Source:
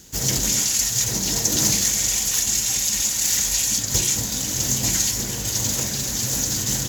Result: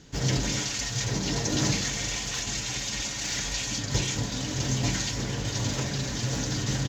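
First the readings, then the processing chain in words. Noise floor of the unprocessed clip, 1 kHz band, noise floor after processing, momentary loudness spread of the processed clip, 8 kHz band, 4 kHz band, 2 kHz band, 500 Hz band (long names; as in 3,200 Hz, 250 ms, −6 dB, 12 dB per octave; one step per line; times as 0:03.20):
−27 dBFS, −0.5 dB, −34 dBFS, 4 LU, −13.0 dB, −6.0 dB, −1.0 dB, −0.5 dB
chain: high-frequency loss of the air 180 metres
comb filter 7 ms, depth 36%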